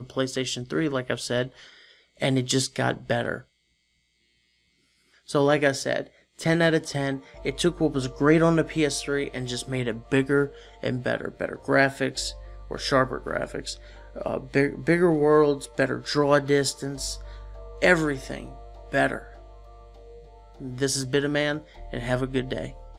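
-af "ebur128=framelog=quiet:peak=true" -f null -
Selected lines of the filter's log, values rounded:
Integrated loudness:
  I:         -25.1 LUFS
  Threshold: -36.2 LUFS
Loudness range:
  LRA:         5.8 LU
  Threshold: -46.0 LUFS
  LRA low:   -29.1 LUFS
  LRA high:  -23.3 LUFS
True peak:
  Peak:       -4.6 dBFS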